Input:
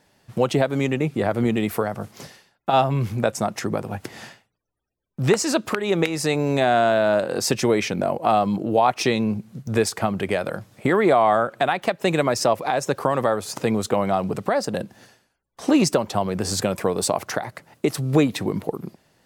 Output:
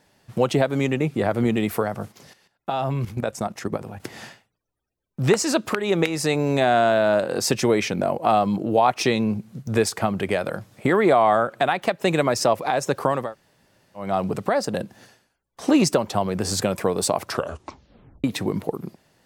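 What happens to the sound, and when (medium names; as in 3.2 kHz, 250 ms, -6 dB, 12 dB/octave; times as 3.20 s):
2.12–4.00 s: level held to a coarse grid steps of 12 dB
13.23–14.06 s: room tone, crossfade 0.24 s
17.20 s: tape stop 1.04 s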